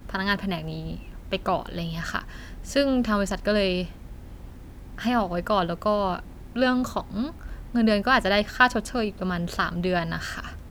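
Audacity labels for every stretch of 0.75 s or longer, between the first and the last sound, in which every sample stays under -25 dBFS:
3.840000	4.980000	silence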